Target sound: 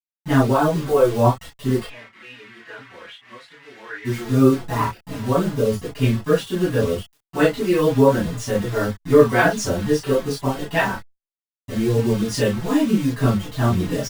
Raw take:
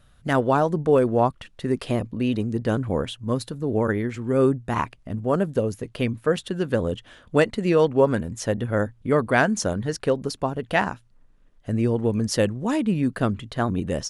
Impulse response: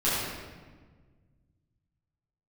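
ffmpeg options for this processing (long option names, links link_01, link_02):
-filter_complex "[0:a]acrusher=bits=5:mix=0:aa=0.000001,asplit=3[link_01][link_02][link_03];[link_01]afade=type=out:start_time=1.82:duration=0.02[link_04];[link_02]bandpass=frequency=2000:width_type=q:width=2.8:csg=0,afade=type=in:start_time=1.82:duration=0.02,afade=type=out:start_time=4.04:duration=0.02[link_05];[link_03]afade=type=in:start_time=4.04:duration=0.02[link_06];[link_04][link_05][link_06]amix=inputs=3:normalize=0[link_07];[1:a]atrim=start_sample=2205,atrim=end_sample=3087[link_08];[link_07][link_08]afir=irnorm=-1:irlink=0,asplit=2[link_09][link_10];[link_10]adelay=4.5,afreqshift=-2.5[link_11];[link_09][link_11]amix=inputs=2:normalize=1,volume=-4dB"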